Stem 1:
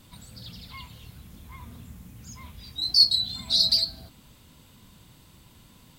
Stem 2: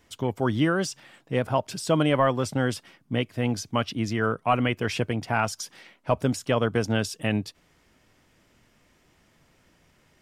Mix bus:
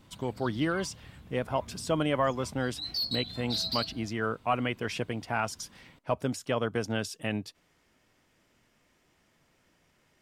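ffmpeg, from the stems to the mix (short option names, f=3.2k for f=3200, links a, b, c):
-filter_complex "[0:a]volume=18dB,asoftclip=hard,volume=-18dB,lowpass=f=1.7k:p=1,volume=-1dB[a];[1:a]volume=-5dB[b];[a][b]amix=inputs=2:normalize=0,lowshelf=f=160:g=-5"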